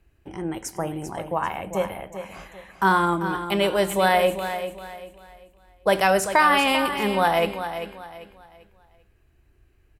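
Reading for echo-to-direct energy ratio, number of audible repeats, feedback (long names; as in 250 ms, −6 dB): −9.5 dB, 3, 32%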